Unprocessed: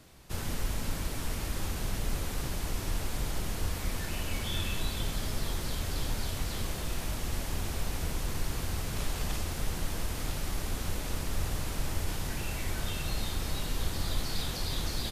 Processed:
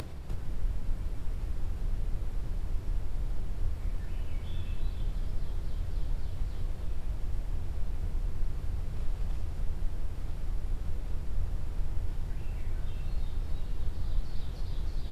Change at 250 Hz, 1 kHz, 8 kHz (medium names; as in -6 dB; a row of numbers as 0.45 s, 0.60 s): -8.0 dB, -12.0 dB, -21.5 dB